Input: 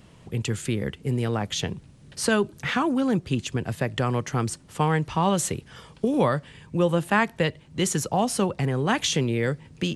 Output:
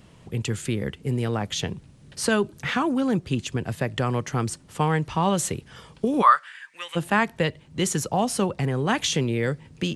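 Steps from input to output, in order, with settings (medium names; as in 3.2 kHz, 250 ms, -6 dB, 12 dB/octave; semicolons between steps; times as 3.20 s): 6.21–6.95 s: resonant high-pass 1.1 kHz -> 2.2 kHz, resonance Q 6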